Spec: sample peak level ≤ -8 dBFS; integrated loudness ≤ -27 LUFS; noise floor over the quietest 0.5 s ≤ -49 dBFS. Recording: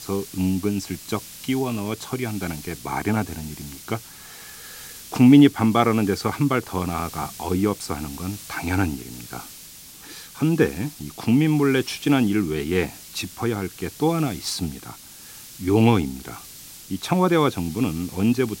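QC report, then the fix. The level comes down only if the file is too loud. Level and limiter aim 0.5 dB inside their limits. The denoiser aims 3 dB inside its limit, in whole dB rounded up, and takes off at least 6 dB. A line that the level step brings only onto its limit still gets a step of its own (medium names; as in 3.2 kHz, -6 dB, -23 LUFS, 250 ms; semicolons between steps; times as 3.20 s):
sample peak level -2.0 dBFS: fail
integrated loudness -22.5 LUFS: fail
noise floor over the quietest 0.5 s -43 dBFS: fail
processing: noise reduction 6 dB, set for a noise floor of -43 dBFS; trim -5 dB; peak limiter -8.5 dBFS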